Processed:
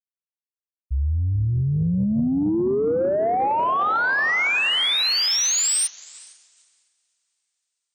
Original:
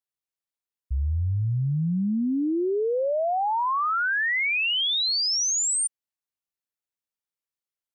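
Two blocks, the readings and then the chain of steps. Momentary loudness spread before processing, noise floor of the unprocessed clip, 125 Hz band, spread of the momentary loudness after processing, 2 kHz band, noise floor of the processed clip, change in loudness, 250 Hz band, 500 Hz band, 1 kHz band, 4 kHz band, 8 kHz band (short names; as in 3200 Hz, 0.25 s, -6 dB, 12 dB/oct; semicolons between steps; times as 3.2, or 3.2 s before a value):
5 LU, under -85 dBFS, +3.5 dB, 6 LU, +3.5 dB, under -85 dBFS, +3.5 dB, +3.5 dB, +3.5 dB, +3.5 dB, +3.5 dB, +3.5 dB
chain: diffused feedback echo 0.455 s, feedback 49%, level -10.5 dB; soft clip -17.5 dBFS, distortion -25 dB; upward expander 2.5:1, over -45 dBFS; gain +5.5 dB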